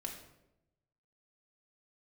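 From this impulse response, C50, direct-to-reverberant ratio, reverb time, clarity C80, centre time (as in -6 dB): 6.0 dB, 0.5 dB, 0.90 s, 8.5 dB, 27 ms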